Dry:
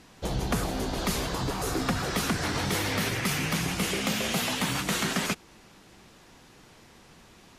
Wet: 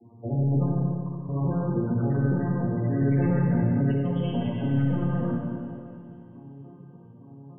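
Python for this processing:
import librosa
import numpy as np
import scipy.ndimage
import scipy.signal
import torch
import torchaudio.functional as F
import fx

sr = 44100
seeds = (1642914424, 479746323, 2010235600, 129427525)

y = fx.vocoder_arp(x, sr, chord='minor triad', root=46, every_ms=288)
y = fx.peak_eq(y, sr, hz=5800.0, db=-7.5, octaves=0.3)
y = 10.0 ** (-31.0 / 20.0) * np.tanh(y / 10.0 ** (-31.0 / 20.0))
y = fx.spec_topn(y, sr, count=16)
y = fx.brickwall_highpass(y, sr, low_hz=940.0, at=(0.82, 1.29))
y = fx.echo_wet_highpass(y, sr, ms=469, feedback_pct=57, hz=2400.0, wet_db=-21.0)
y = fx.rev_schroeder(y, sr, rt60_s=2.3, comb_ms=29, drr_db=-1.5)
y = fx.env_flatten(y, sr, amount_pct=70, at=(3.01, 3.92))
y = y * 10.0 ** (7.0 / 20.0)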